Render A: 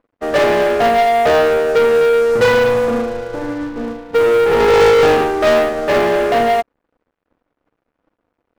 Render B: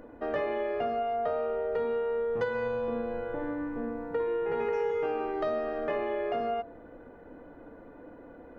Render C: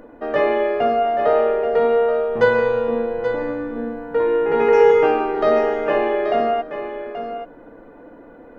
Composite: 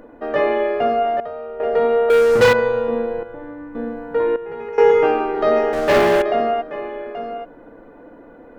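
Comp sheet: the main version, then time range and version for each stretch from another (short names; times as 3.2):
C
1.2–1.6 from B
2.1–2.53 from A
3.23–3.75 from B
4.36–4.78 from B
5.73–6.22 from A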